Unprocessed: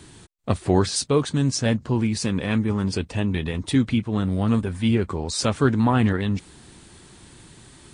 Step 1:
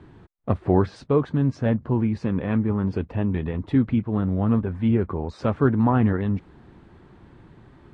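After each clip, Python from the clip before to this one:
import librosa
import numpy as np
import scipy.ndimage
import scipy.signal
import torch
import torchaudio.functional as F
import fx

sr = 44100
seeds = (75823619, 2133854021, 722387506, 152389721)

y = scipy.signal.sosfilt(scipy.signal.butter(2, 1400.0, 'lowpass', fs=sr, output='sos'), x)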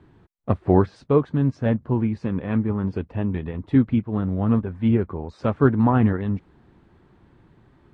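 y = fx.upward_expand(x, sr, threshold_db=-32.0, expansion=1.5)
y = F.gain(torch.from_numpy(y), 3.0).numpy()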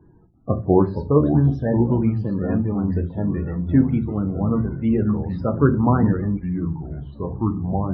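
y = fx.spec_topn(x, sr, count=32)
y = fx.room_shoebox(y, sr, seeds[0], volume_m3=130.0, walls='furnished', distance_m=0.59)
y = fx.echo_pitch(y, sr, ms=338, semitones=-4, count=2, db_per_echo=-6.0)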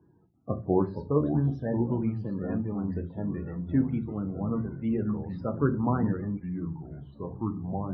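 y = scipy.signal.sosfilt(scipy.signal.butter(2, 94.0, 'highpass', fs=sr, output='sos'), x)
y = F.gain(torch.from_numpy(y), -8.5).numpy()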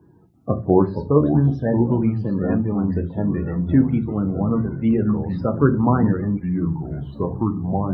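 y = fx.recorder_agc(x, sr, target_db=-19.5, rise_db_per_s=5.2, max_gain_db=30)
y = F.gain(torch.from_numpy(y), 9.0).numpy()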